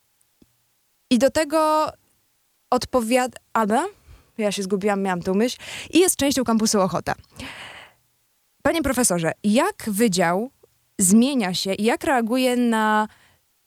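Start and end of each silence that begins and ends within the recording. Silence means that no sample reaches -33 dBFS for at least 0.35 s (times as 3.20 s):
1.90–2.72 s
3.89–4.39 s
7.82–8.65 s
10.47–10.99 s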